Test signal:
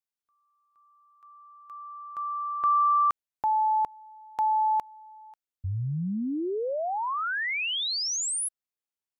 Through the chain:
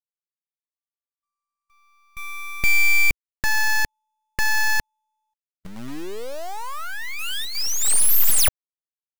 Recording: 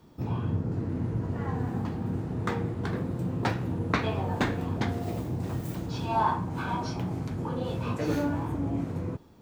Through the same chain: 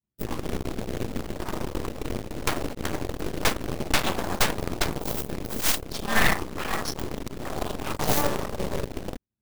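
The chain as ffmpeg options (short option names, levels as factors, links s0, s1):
-filter_complex "[0:a]highpass=f=56:w=0.5412,highpass=f=56:w=1.3066,aemphasis=mode=production:type=75fm,anlmdn=10,equalizer=f=2100:t=o:w=0.21:g=-4,acrossover=split=150[s0][s1];[s0]acompressor=threshold=0.0178:ratio=4:attack=12:release=374:knee=2.83:detection=peak[s2];[s2][s1]amix=inputs=2:normalize=0,aeval=exprs='0.355*(cos(1*acos(clip(val(0)/0.355,-1,1)))-cos(1*PI/2))+0.141*(cos(3*acos(clip(val(0)/0.355,-1,1)))-cos(3*PI/2))+0.0282*(cos(6*acos(clip(val(0)/0.355,-1,1)))-cos(6*PI/2))+0.158*(cos(8*acos(clip(val(0)/0.355,-1,1)))-cos(8*PI/2))':c=same,asoftclip=type=hard:threshold=0.211,acrusher=bits=2:mode=log:mix=0:aa=0.000001"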